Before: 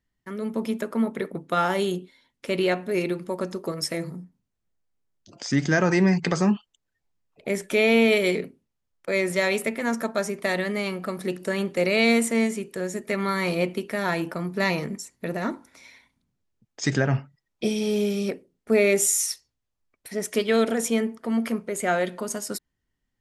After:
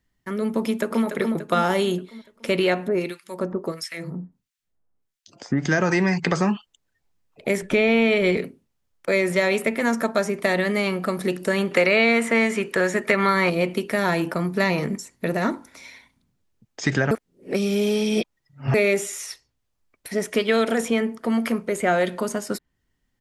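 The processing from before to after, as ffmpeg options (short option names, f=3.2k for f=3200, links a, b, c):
-filter_complex "[0:a]asplit=2[a][b];[b]afade=t=in:st=0.61:d=0.01,afade=t=out:st=1.05:d=0.01,aecho=0:1:290|580|870|1160|1450|1740:0.446684|0.223342|0.111671|0.0558354|0.0279177|0.0139589[c];[a][c]amix=inputs=2:normalize=0,asettb=1/sr,asplit=3[d][e][f];[d]atrim=end=2.884[g];[e]atrim=start=2.88:end=5.65,asetpts=PTS-STARTPTS,afade=t=in:d=0.004:c=qsin,afade=t=out:st=2.766:d=0.004:c=qsin,acrossover=split=1500[h][i];[h]aeval=exprs='val(0)*(1-1/2+1/2*cos(2*PI*1.5*n/s))':c=same[j];[i]aeval=exprs='val(0)*(1-1/2-1/2*cos(2*PI*1.5*n/s))':c=same[k];[j][k]amix=inputs=2:normalize=0[l];[f]atrim=start=5.646[m];[g][l]acrossfade=d=0.004:c1=hsin:c2=qsin[n];[n][m]acrossfade=d=0.004:c1=qsin:c2=hsin,asettb=1/sr,asplit=3[o][p][q];[o]atrim=end=7.624[r];[p]atrim=start=7.62:end=8.37,asetpts=PTS-STARTPTS,afade=t=in:d=0.004:c=qsin,afade=t=out:st=0.746:d=0.004:c=qsin,aemphasis=mode=reproduction:type=bsi[s];[q]atrim=start=8.366[t];[r][s]acrossfade=d=0.004:c1=hsin:c2=qsin[u];[u][t]acrossfade=d=0.004:c1=qsin:c2=hsin,asettb=1/sr,asplit=3[v][w][x];[v]atrim=end=11.714[y];[w]atrim=start=11.71:end=13.5,asetpts=PTS-STARTPTS,afade=t=in:d=0.004:c=qsin,afade=t=out:st=1.786:d=0.004:c=qsin,equalizer=f=1.6k:t=o:w=3:g=12[z];[x]atrim=start=13.496[aa];[y][z]acrossfade=d=0.004:c1=hsin:c2=qsin[ab];[ab][aa]acrossfade=d=0.004:c1=qsin:c2=hsin,asplit=3[ac][ad][ae];[ac]atrim=end=17.112[af];[ad]atrim=start=17.108:end=18.742,asetpts=PTS-STARTPTS,areverse[ag];[ae]atrim=start=18.738[ah];[af][ag]acrossfade=d=0.004:c1=hsin:c2=hsin[ai];[ai][ah]acrossfade=d=0.004:c1=hsin:c2=hsin,acrossover=split=680|3400[aj][ak][al];[aj]acompressor=threshold=-26dB:ratio=4[am];[ak]acompressor=threshold=-28dB:ratio=4[an];[al]acompressor=threshold=-43dB:ratio=4[ao];[am][an][ao]amix=inputs=3:normalize=0,volume=6dB"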